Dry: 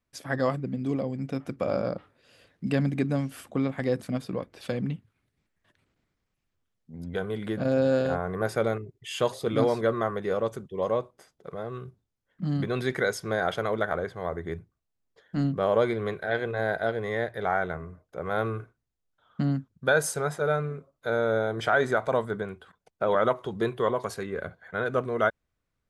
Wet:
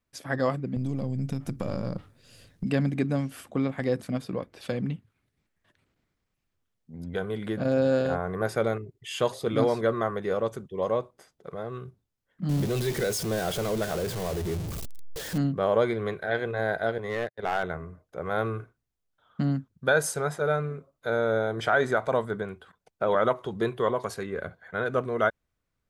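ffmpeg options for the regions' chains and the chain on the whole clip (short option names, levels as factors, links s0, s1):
-filter_complex "[0:a]asettb=1/sr,asplit=3[s0][s1][s2];[s0]atrim=end=0.764[s3];[s1]atrim=start=0.76:end=2.64,asetpts=PTS-STARTPTS,afade=t=in:d=0.004:c=qsin,afade=t=out:st=1.876:d=0.004:c=qsin,aeval=exprs='if(lt(val(0),0),0.708*val(0),val(0))':c=same,bass=f=250:g=14,treble=f=4000:g=12,acompressor=threshold=0.0562:ratio=6:attack=3.2:release=140:knee=1:detection=peak[s4];[s2]atrim=start=2.636[s5];[s3][s4]acrossfade=d=0.004:c1=hsin:c2=qsin[s6];[s6][s5]acrossfade=d=0.004:c1=qsin:c2=hsin,asettb=1/sr,asplit=3[s7][s8][s9];[s7]atrim=end=12.494[s10];[s8]atrim=start=12.49:end=15.38,asetpts=PTS-STARTPTS,afade=t=in:d=0.004:c=qsin,afade=t=out:st=2.886:d=0.004:c=qsin,aeval=exprs='val(0)+0.5*0.0501*sgn(val(0))':c=same,equalizer=f=1400:w=0.57:g=-10,bandreject=f=260:w=7.7[s11];[s9]atrim=start=15.376[s12];[s10][s11]acrossfade=d=0.004:c1=hsin:c2=qsin[s13];[s13][s12]acrossfade=d=0.004:c1=qsin:c2=hsin,asettb=1/sr,asplit=3[s14][s15][s16];[s14]atrim=end=16.984[s17];[s15]atrim=start=16.98:end=17.63,asetpts=PTS-STARTPTS,afade=t=in:d=0.004:c=qsin,afade=t=out:st=0.646:d=0.004:c=qsin,agate=range=0.00282:threshold=0.0224:ratio=16:release=100:detection=peak,acompressor=mode=upward:threshold=0.0126:ratio=2.5:attack=3.2:release=140:knee=2.83:detection=peak,aeval=exprs='clip(val(0),-1,0.0596)':c=same[s18];[s16]atrim=start=17.626[s19];[s17][s18]acrossfade=d=0.004:c1=hsin:c2=qsin[s20];[s20][s19]acrossfade=d=0.004:c1=qsin:c2=hsin"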